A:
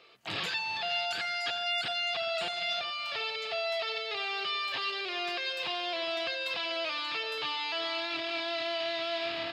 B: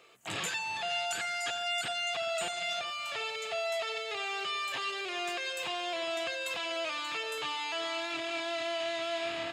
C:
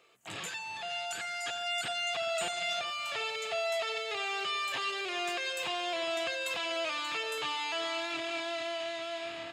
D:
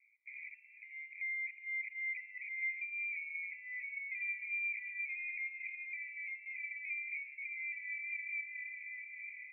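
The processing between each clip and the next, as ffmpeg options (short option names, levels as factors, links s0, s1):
-af "highshelf=f=5900:t=q:w=3:g=8"
-af "dynaudnorm=f=640:g=5:m=2,volume=0.562"
-af "asuperpass=centerf=2200:order=12:qfactor=4.7,volume=1.33"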